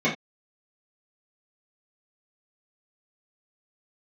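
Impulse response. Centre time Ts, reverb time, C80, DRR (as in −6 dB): 23 ms, non-exponential decay, 16.5 dB, −10.0 dB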